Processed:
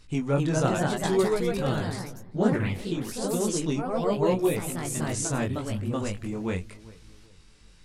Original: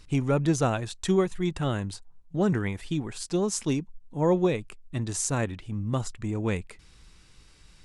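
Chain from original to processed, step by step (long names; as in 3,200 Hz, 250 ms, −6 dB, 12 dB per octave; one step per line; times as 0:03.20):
feedback echo with a low-pass in the loop 393 ms, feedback 38%, low-pass 1,300 Hz, level −20 dB
chorus effect 0.86 Hz, delay 18 ms, depth 5 ms
delay with pitch and tempo change per echo 269 ms, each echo +2 semitones, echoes 3
level +1.5 dB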